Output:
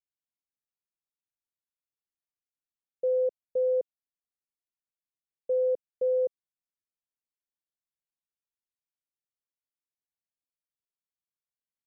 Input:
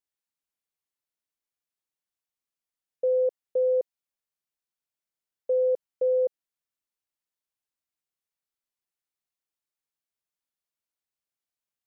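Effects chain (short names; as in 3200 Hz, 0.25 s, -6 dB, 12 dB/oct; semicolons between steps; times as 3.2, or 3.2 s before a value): low shelf 440 Hz +12 dB; upward expander 1.5:1, over -35 dBFS; gain -7.5 dB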